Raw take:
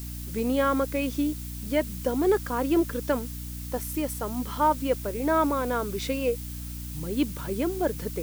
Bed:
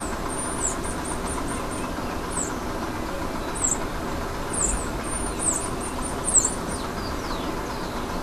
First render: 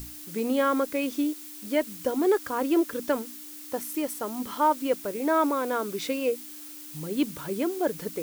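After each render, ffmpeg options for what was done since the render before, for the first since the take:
-af "bandreject=f=60:t=h:w=6,bandreject=f=120:t=h:w=6,bandreject=f=180:t=h:w=6,bandreject=f=240:t=h:w=6"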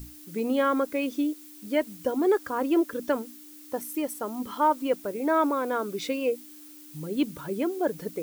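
-af "afftdn=nr=7:nf=-43"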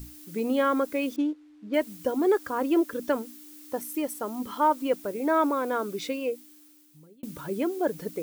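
-filter_complex "[0:a]asettb=1/sr,asplit=3[s0][s1][s2];[s0]atrim=end=1.164[s3];[s1]atrim=start=1.16:end=1.74,asetpts=PTS-STARTPTS,afade=t=in:d=0.004:c=qsin,afade=t=out:st=0.576:d=0.004:c=qsin,adynamicsmooth=sensitivity=7:basefreq=1600[s4];[s2]atrim=start=1.736[s5];[s3][s4]acrossfade=d=0.004:c1=hsin:c2=qsin[s6];[s6][s5]acrossfade=d=0.004:c1=qsin:c2=hsin,asplit=2[s7][s8];[s7]atrim=end=7.23,asetpts=PTS-STARTPTS,afade=t=out:st=5.86:d=1.37[s9];[s8]atrim=start=7.23,asetpts=PTS-STARTPTS,afade=t=in:d=0.004:c=hsin[s10];[s9][s10]concat=n=2:v=0:a=1"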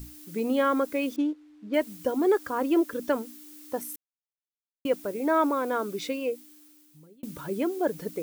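-filter_complex "[0:a]asplit=3[s0][s1][s2];[s0]atrim=end=3.96,asetpts=PTS-STARTPTS,afade=t=out:st=3.956:d=0.004:c=hsin[s3];[s1]atrim=start=3.96:end=4.85,asetpts=PTS-STARTPTS,volume=0[s4];[s2]atrim=start=4.85,asetpts=PTS-STARTPTS,afade=t=in:d=0.004:c=hsin[s5];[s3][s4][s5]concat=n=3:v=0:a=1"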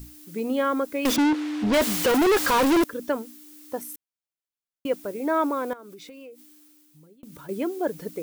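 -filter_complex "[0:a]asettb=1/sr,asplit=3[s0][s1][s2];[s0]atrim=end=1.054[s3];[s1]atrim=start=1.05:end=2.84,asetpts=PTS-STARTPTS,afade=t=in:d=0.004:c=qsin,afade=t=out:st=1.786:d=0.004:c=qsin,asplit=2[s4][s5];[s5]highpass=f=720:p=1,volume=89.1,asoftclip=type=tanh:threshold=0.211[s6];[s4][s6]amix=inputs=2:normalize=0,lowpass=f=5800:p=1,volume=0.501[s7];[s2]atrim=start=2.836[s8];[s3][s7]acrossfade=d=0.004:c1=hsin:c2=qsin[s9];[s9][s8]acrossfade=d=0.004:c1=qsin:c2=hsin,asettb=1/sr,asplit=3[s10][s11][s12];[s10]atrim=end=5.734[s13];[s11]atrim=start=5.73:end=7.49,asetpts=PTS-STARTPTS,afade=t=in:d=0.004:c=qsin,afade=t=out:st=1.756:d=0.004:c=qsin,acompressor=threshold=0.01:ratio=12:attack=3.2:release=140:knee=1:detection=peak[s14];[s12]atrim=start=7.486[s15];[s13][s14]acrossfade=d=0.004:c1=hsin:c2=qsin[s16];[s16][s15]acrossfade=d=0.004:c1=qsin:c2=hsin"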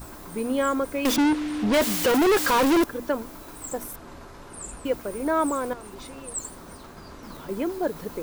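-filter_complex "[1:a]volume=0.188[s0];[0:a][s0]amix=inputs=2:normalize=0"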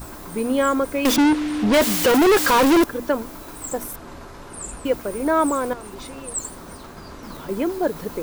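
-af "volume=1.68"

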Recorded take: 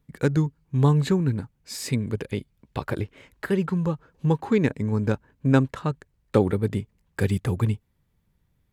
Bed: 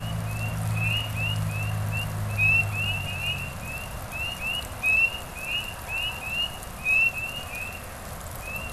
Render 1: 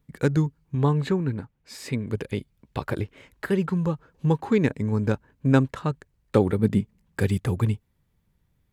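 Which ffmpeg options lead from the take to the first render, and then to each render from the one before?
-filter_complex "[0:a]asettb=1/sr,asplit=3[s0][s1][s2];[s0]atrim=end=0.754[s3];[s1]atrim=start=0.75:end=2.11,asetpts=PTS-STARTPTS,afade=t=in:d=0.004:c=qsin,afade=t=out:st=1.356:d=0.004:c=qsin,bass=f=250:g=-4,treble=f=4000:g=-9[s4];[s2]atrim=start=2.106[s5];[s3][s4]acrossfade=d=0.004:c1=hsin:c2=qsin[s6];[s6][s5]acrossfade=d=0.004:c1=qsin:c2=hsin,asettb=1/sr,asplit=3[s7][s8][s9];[s7]atrim=end=6.594[s10];[s8]atrim=start=6.59:end=7.2,asetpts=PTS-STARTPTS,afade=t=in:d=0.004:c=qsin,afade=t=out:st=0.606:d=0.004:c=qsin,equalizer=f=200:t=o:w=0.77:g=8.5[s11];[s9]atrim=start=7.196[s12];[s10][s11]acrossfade=d=0.004:c1=hsin:c2=qsin[s13];[s13][s12]acrossfade=d=0.004:c1=qsin:c2=hsin"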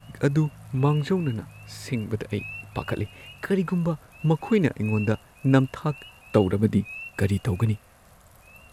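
-filter_complex "[1:a]volume=0.15[s0];[0:a][s0]amix=inputs=2:normalize=0"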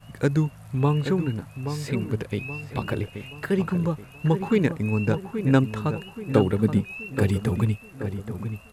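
-filter_complex "[0:a]asplit=2[s0][s1];[s1]adelay=827,lowpass=f=2000:p=1,volume=0.376,asplit=2[s2][s3];[s3]adelay=827,lowpass=f=2000:p=1,volume=0.45,asplit=2[s4][s5];[s5]adelay=827,lowpass=f=2000:p=1,volume=0.45,asplit=2[s6][s7];[s7]adelay=827,lowpass=f=2000:p=1,volume=0.45,asplit=2[s8][s9];[s9]adelay=827,lowpass=f=2000:p=1,volume=0.45[s10];[s0][s2][s4][s6][s8][s10]amix=inputs=6:normalize=0"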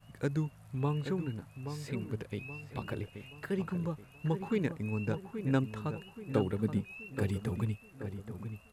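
-af "volume=0.299"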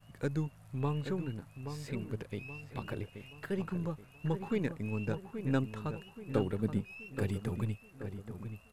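-af "aeval=exprs='if(lt(val(0),0),0.708*val(0),val(0))':c=same"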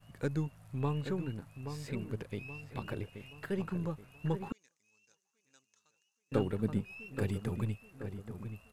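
-filter_complex "[0:a]asettb=1/sr,asplit=3[s0][s1][s2];[s0]atrim=end=4.524[s3];[s1]atrim=start=4.52:end=6.32,asetpts=PTS-STARTPTS,afade=t=in:d=0.004:c=qsin,afade=t=out:st=1.796:d=0.004:c=qsin,bandpass=f=6200:t=q:w=7.3[s4];[s2]atrim=start=6.316[s5];[s3][s4]acrossfade=d=0.004:c1=hsin:c2=qsin[s6];[s6][s5]acrossfade=d=0.004:c1=qsin:c2=hsin"

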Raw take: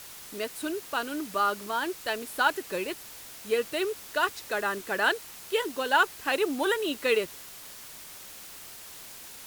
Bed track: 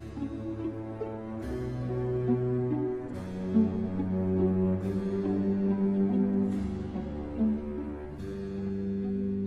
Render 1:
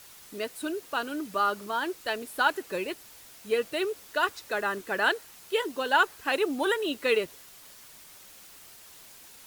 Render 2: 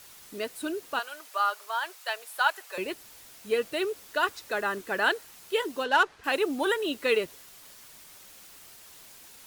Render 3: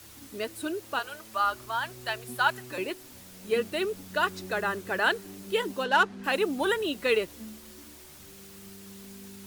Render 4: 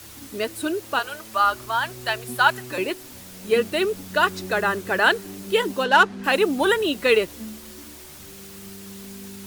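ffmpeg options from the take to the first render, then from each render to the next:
-af "afftdn=nr=6:nf=-45"
-filter_complex "[0:a]asettb=1/sr,asplit=3[s0][s1][s2];[s0]atrim=end=0.994[s3];[s1]atrim=start=0.99:end=2.78,asetpts=PTS-STARTPTS,afade=t=in:d=0.004:c=qsin,afade=t=out:st=1.786:d=0.004:c=qsin,highpass=f=640:w=0.5412,highpass=f=640:w=1.3066[s4];[s2]atrim=start=2.776[s5];[s3][s4]acrossfade=d=0.004:c1=hsin:c2=qsin[s6];[s6][s5]acrossfade=d=0.004:c1=qsin:c2=hsin,asettb=1/sr,asplit=3[s7][s8][s9];[s7]atrim=end=5.844[s10];[s8]atrim=start=5.84:end=6.24,asetpts=PTS-STARTPTS,afade=t=in:d=0.004:c=qsin,afade=t=out:st=0.396:d=0.004:c=qsin,adynamicsmooth=sensitivity=6:basefreq=3900[s11];[s9]atrim=start=6.236[s12];[s10][s11]acrossfade=d=0.004:c1=hsin:c2=qsin[s13];[s13][s12]acrossfade=d=0.004:c1=qsin:c2=hsin"
-filter_complex "[1:a]volume=0.15[s0];[0:a][s0]amix=inputs=2:normalize=0"
-af "volume=2.24"

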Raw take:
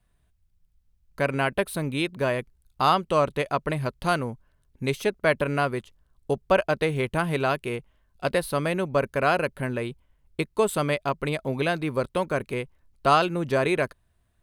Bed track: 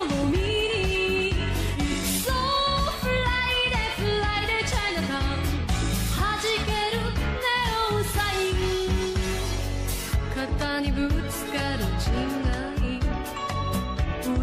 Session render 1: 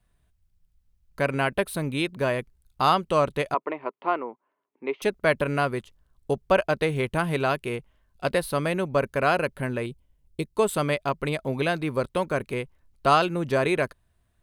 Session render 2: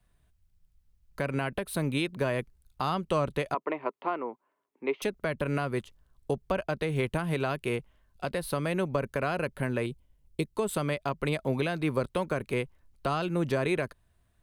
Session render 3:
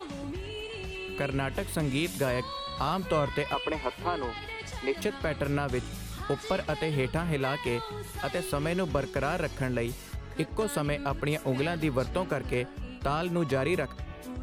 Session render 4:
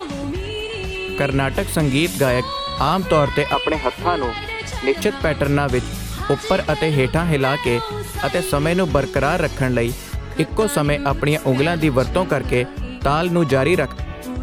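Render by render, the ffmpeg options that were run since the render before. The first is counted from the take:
-filter_complex "[0:a]asettb=1/sr,asplit=3[s0][s1][s2];[s0]atrim=end=3.544[s3];[s1]atrim=start=3.54:end=5.02,asetpts=PTS-STARTPTS,afade=t=in:d=0.004:c=qsin,afade=t=out:st=1.476:d=0.004:c=qsin,highpass=f=320:w=0.5412,highpass=f=320:w=1.3066,equalizer=f=330:t=q:w=4:g=3,equalizer=f=560:t=q:w=4:g=-4,equalizer=f=990:t=q:w=4:g=5,equalizer=f=1600:t=q:w=4:g=-10,lowpass=f=2300:w=0.5412,lowpass=f=2300:w=1.3066[s4];[s2]atrim=start=5.016[s5];[s3][s4]acrossfade=d=0.004:c1=hsin:c2=qsin[s6];[s6][s5]acrossfade=d=0.004:c1=qsin:c2=hsin,asettb=1/sr,asplit=3[s7][s8][s9];[s7]atrim=end=9.864[s10];[s8]atrim=start=9.86:end=10.56,asetpts=PTS-STARTPTS,afade=t=in:d=0.004:c=qsin,afade=t=out:st=0.696:d=0.004:c=qsin,equalizer=f=1400:w=0.69:g=-11.5[s11];[s9]atrim=start=10.556[s12];[s10][s11]acrossfade=d=0.004:c1=hsin:c2=qsin[s13];[s13][s12]acrossfade=d=0.004:c1=qsin:c2=hsin"
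-filter_complex "[0:a]acrossover=split=270[s0][s1];[s1]acompressor=threshold=0.0631:ratio=6[s2];[s0][s2]amix=inputs=2:normalize=0,alimiter=limit=0.141:level=0:latency=1:release=179"
-filter_complex "[1:a]volume=0.211[s0];[0:a][s0]amix=inputs=2:normalize=0"
-af "volume=3.76"

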